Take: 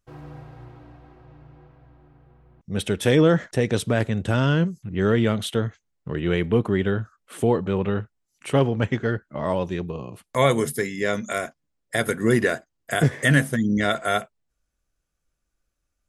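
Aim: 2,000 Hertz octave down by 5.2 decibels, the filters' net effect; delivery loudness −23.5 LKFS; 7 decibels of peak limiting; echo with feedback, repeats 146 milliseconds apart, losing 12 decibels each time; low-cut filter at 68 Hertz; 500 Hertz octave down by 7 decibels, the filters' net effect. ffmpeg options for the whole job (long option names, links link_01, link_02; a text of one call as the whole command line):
ffmpeg -i in.wav -af "highpass=68,equalizer=frequency=500:width_type=o:gain=-8.5,equalizer=frequency=2000:width_type=o:gain=-6,alimiter=limit=-15.5dB:level=0:latency=1,aecho=1:1:146|292|438:0.251|0.0628|0.0157,volume=4.5dB" out.wav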